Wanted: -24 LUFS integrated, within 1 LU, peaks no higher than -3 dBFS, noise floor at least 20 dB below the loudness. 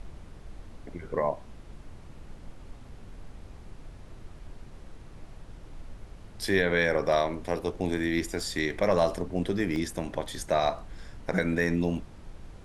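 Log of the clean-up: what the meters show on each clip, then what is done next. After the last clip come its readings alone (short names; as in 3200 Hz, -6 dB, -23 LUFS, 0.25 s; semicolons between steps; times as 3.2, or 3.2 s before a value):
dropouts 2; longest dropout 1.2 ms; noise floor -48 dBFS; noise floor target -49 dBFS; loudness -28.5 LUFS; peak -11.0 dBFS; loudness target -24.0 LUFS
-> interpolate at 8.4/9.76, 1.2 ms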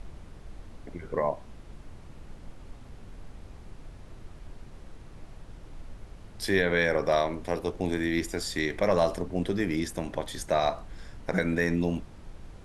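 dropouts 0; noise floor -48 dBFS; noise floor target -49 dBFS
-> noise print and reduce 6 dB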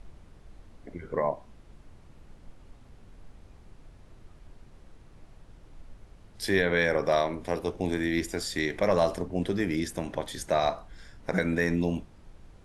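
noise floor -54 dBFS; loudness -28.5 LUFS; peak -11.0 dBFS; loudness target -24.0 LUFS
-> gain +4.5 dB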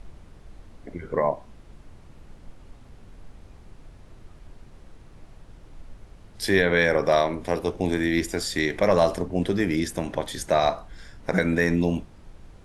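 loudness -24.0 LUFS; peak -6.5 dBFS; noise floor -49 dBFS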